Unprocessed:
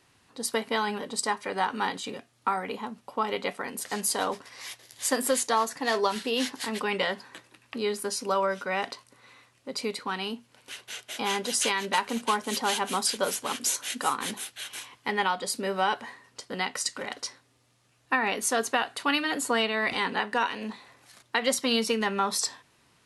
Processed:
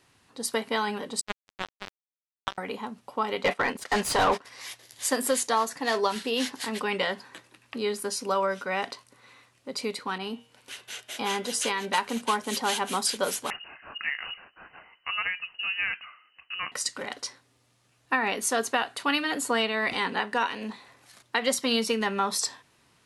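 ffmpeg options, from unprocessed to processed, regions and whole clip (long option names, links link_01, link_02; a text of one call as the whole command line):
ffmpeg -i in.wav -filter_complex "[0:a]asettb=1/sr,asplit=3[link_01][link_02][link_03];[link_01]atrim=end=1.214[link_04];[link_02]atrim=start=1.21:end=2.58,asetpts=PTS-STARTPTS,afade=type=in:duration=0.004:curve=qsin,afade=type=out:start_time=1.366:duration=0.004:curve=qsin,lowpass=1800,acrusher=bits=2:mix=0:aa=0.5[link_05];[link_03]atrim=start=2.576[link_06];[link_04][link_05]acrossfade=duration=0.004:curve1=hsin:curve2=qsin[link_07];[link_07][link_06]acrossfade=duration=0.004:curve1=qsin:curve2=hsin,asettb=1/sr,asplit=3[link_08][link_09][link_10];[link_08]atrim=end=3.434[link_11];[link_09]atrim=start=3.43:end=4.45,asetpts=PTS-STARTPTS,afade=type=in:duration=0.004:curve=qsin,afade=type=out:start_time=1.016:duration=0.004:curve=qsin,asplit=2[link_12][link_13];[link_13]highpass=frequency=720:poles=1,volume=21dB,asoftclip=type=tanh:threshold=-12.5dB[link_14];[link_12][link_14]amix=inputs=2:normalize=0,lowpass=frequency=2300:poles=1,volume=-6dB,agate=range=-15dB:threshold=-32dB:ratio=16:release=100:detection=peak,lowshelf=frequency=140:gain=6[link_15];[link_10]atrim=start=4.446[link_16];[link_11][link_15]acrossfade=duration=0.004:curve1=hsin:curve2=qsin[link_17];[link_17][link_16]acrossfade=duration=0.004:curve1=qsin:curve2=hsin,asettb=1/sr,asplit=3[link_18][link_19][link_20];[link_18]atrim=end=10.184[link_21];[link_19]atrim=start=10.18:end=11.9,asetpts=PTS-STARTPTS,afade=type=in:duration=0.004:curve=qsin,afade=type=out:start_time=1.716:duration=0.004:curve=qsin,bandreject=frequency=156:width_type=h:width=4,bandreject=frequency=312:width_type=h:width=4,bandreject=frequency=468:width_type=h:width=4,bandreject=frequency=624:width_type=h:width=4,bandreject=frequency=780:width_type=h:width=4,bandreject=frequency=936:width_type=h:width=4,bandreject=frequency=1092:width_type=h:width=4,bandreject=frequency=1248:width_type=h:width=4,bandreject=frequency=1404:width_type=h:width=4,bandreject=frequency=1560:width_type=h:width=4,bandreject=frequency=1716:width_type=h:width=4,bandreject=frequency=1872:width_type=h:width=4,bandreject=frequency=2028:width_type=h:width=4,bandreject=frequency=2184:width_type=h:width=4,bandreject=frequency=2340:width_type=h:width=4,bandreject=frequency=2496:width_type=h:width=4,bandreject=frequency=2652:width_type=h:width=4,bandreject=frequency=2808:width_type=h:width=4,bandreject=frequency=2964:width_type=h:width=4,bandreject=frequency=3120:width_type=h:width=4,bandreject=frequency=3276:width_type=h:width=4,bandreject=frequency=3432:width_type=h:width=4,bandreject=frequency=3588:width_type=h:width=4,bandreject=frequency=3744:width_type=h:width=4,adynamicequalizer=threshold=0.01:dfrequency=1700:dqfactor=0.7:tfrequency=1700:tqfactor=0.7:attack=5:release=100:ratio=0.375:range=2:mode=cutabove:tftype=highshelf[link_22];[link_20]atrim=start=11.896[link_23];[link_21][link_22]acrossfade=duration=0.004:curve1=hsin:curve2=qsin[link_24];[link_24][link_23]acrossfade=duration=0.004:curve1=qsin:curve2=hsin,asettb=1/sr,asplit=3[link_25][link_26][link_27];[link_25]atrim=end=13.504[link_28];[link_26]atrim=start=13.5:end=16.72,asetpts=PTS-STARTPTS,afade=type=in:duration=0.004:curve=qsin,afade=type=out:start_time=3.216:duration=0.004:curve=qsin,equalizer=frequency=830:width_type=o:width=0.29:gain=-11,adynamicsmooth=sensitivity=0.5:basefreq=2200,lowpass=frequency=2600:width_type=q:width=0.5098,lowpass=frequency=2600:width_type=q:width=0.6013,lowpass=frequency=2600:width_type=q:width=0.9,lowpass=frequency=2600:width_type=q:width=2.563,afreqshift=-3100[link_29];[link_27]atrim=start=16.716[link_30];[link_28][link_29]acrossfade=duration=0.004:curve1=hsin:curve2=qsin[link_31];[link_31][link_30]acrossfade=duration=0.004:curve1=qsin:curve2=hsin" out.wav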